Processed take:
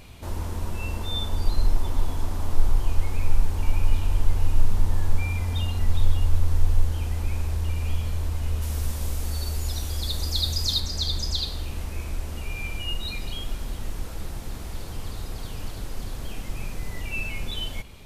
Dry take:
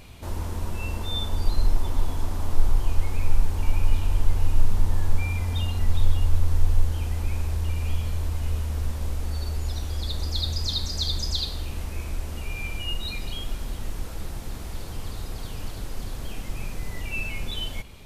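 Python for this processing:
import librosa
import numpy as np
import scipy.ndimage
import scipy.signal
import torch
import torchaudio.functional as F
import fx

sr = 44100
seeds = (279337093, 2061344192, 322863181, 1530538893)

y = fx.high_shelf(x, sr, hz=fx.line((8.61, 4300.0), (10.79, 5900.0)), db=10.5, at=(8.61, 10.79), fade=0.02)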